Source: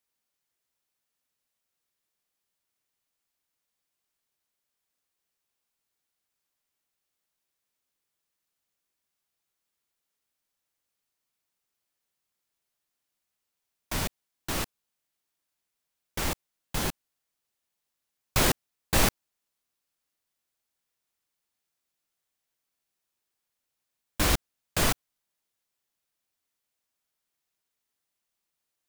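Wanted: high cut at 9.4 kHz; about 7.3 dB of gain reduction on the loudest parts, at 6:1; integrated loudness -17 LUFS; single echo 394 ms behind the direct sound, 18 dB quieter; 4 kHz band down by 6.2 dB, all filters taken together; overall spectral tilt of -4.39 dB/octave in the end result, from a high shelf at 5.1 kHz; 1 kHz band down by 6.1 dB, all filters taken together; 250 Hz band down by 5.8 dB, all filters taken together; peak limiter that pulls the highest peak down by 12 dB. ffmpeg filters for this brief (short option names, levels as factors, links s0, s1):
-af "lowpass=9400,equalizer=f=250:t=o:g=-8,equalizer=f=1000:t=o:g=-7,equalizer=f=4000:t=o:g=-5,highshelf=f=5100:g=-5.5,acompressor=threshold=0.0398:ratio=6,alimiter=level_in=1.68:limit=0.0631:level=0:latency=1,volume=0.596,aecho=1:1:394:0.126,volume=23.7"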